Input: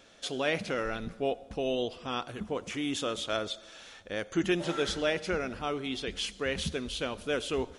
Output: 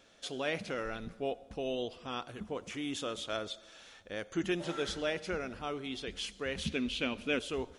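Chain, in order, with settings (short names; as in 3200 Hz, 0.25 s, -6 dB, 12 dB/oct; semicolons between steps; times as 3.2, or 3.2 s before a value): 6.65–7.39 fifteen-band EQ 250 Hz +10 dB, 2500 Hz +11 dB, 10000 Hz -6 dB; gain -5 dB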